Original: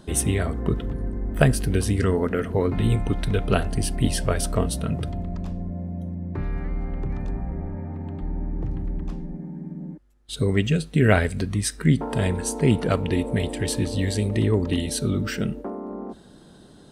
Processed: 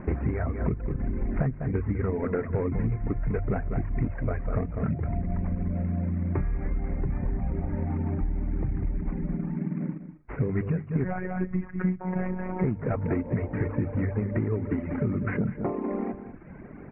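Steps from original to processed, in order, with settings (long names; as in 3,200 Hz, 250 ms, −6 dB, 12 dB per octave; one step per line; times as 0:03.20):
variable-slope delta modulation 16 kbit/s
far-end echo of a speakerphone 240 ms, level −16 dB
reverb reduction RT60 1.1 s
single-tap delay 197 ms −12.5 dB
0:11.04–0:12.64: phases set to zero 184 Hz
low-shelf EQ 270 Hz +6.5 dB
mains-hum notches 50/100/150 Hz
downward compressor 12 to 1, threshold −29 dBFS, peak gain reduction 18.5 dB
elliptic low-pass filter 2,200 Hz, stop band 40 dB
level +6.5 dB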